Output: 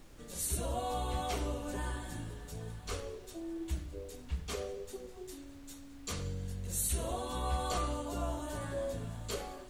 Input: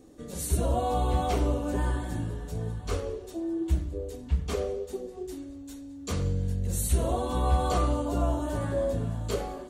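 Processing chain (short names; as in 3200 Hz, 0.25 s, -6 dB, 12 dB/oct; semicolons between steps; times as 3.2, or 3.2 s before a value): added noise brown -43 dBFS; tilt shelf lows -5 dB, about 1100 Hz; gain -6 dB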